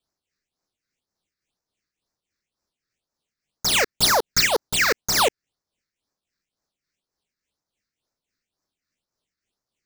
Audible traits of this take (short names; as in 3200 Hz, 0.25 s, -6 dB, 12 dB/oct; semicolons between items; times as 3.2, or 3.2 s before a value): tremolo triangle 3.5 Hz, depth 55%; aliases and images of a low sample rate 13000 Hz, jitter 0%; phasing stages 6, 2 Hz, lowest notch 790–3000 Hz